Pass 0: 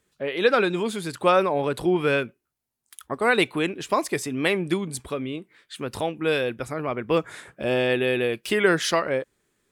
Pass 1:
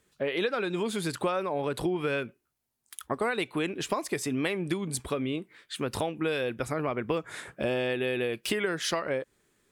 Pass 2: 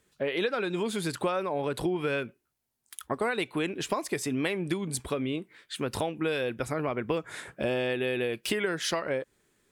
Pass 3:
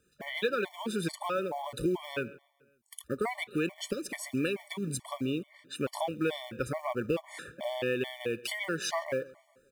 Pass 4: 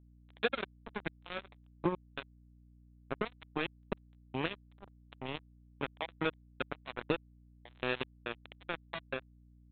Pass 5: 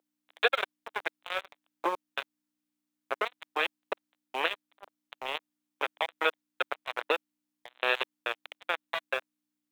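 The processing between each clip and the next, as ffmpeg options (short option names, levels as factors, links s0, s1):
-af "acompressor=threshold=0.0447:ratio=12,volume=1.19"
-af "bandreject=f=1200:w=25"
-filter_complex "[0:a]asplit=2[s0][s1];[s1]adelay=137,lowpass=f=4900:p=1,volume=0.0891,asplit=2[s2][s3];[s3]adelay=137,lowpass=f=4900:p=1,volume=0.52,asplit=2[s4][s5];[s5]adelay=137,lowpass=f=4900:p=1,volume=0.52,asplit=2[s6][s7];[s7]adelay=137,lowpass=f=4900:p=1,volume=0.52[s8];[s0][s2][s4][s6][s8]amix=inputs=5:normalize=0,acrusher=bits=7:mode=log:mix=0:aa=0.000001,afftfilt=real='re*gt(sin(2*PI*2.3*pts/sr)*(1-2*mod(floor(b*sr/1024/590),2)),0)':imag='im*gt(sin(2*PI*2.3*pts/sr)*(1-2*mod(floor(b*sr/1024/590),2)),0)':win_size=1024:overlap=0.75"
-af "aresample=8000,acrusher=bits=3:mix=0:aa=0.5,aresample=44100,aeval=exprs='val(0)+0.00141*(sin(2*PI*60*n/s)+sin(2*PI*2*60*n/s)/2+sin(2*PI*3*60*n/s)/3+sin(2*PI*4*60*n/s)/4+sin(2*PI*5*60*n/s)/5)':c=same,volume=0.794"
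-filter_complex "[0:a]highpass=f=510:w=0.5412,highpass=f=510:w=1.3066,asplit=2[s0][s1];[s1]aeval=exprs='val(0)*gte(abs(val(0)),0.0075)':c=same,volume=0.501[s2];[s0][s2]amix=inputs=2:normalize=0,volume=1.88"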